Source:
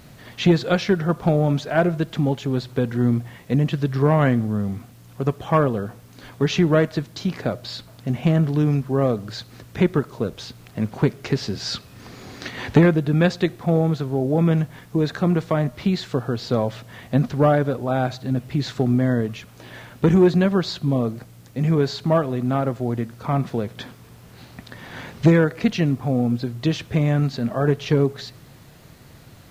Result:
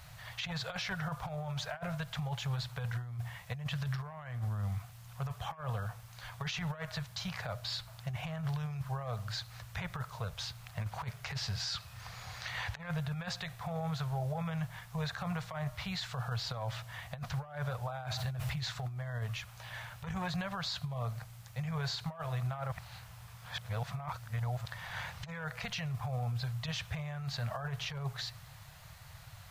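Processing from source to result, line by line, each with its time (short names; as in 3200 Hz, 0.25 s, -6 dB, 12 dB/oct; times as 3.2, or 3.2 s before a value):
18.02–18.63 fast leveller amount 50%
22.72–24.65 reverse
whole clip: Chebyshev band-stop 110–820 Hz, order 2; negative-ratio compressor -29 dBFS, ratio -0.5; limiter -22.5 dBFS; gain -5.5 dB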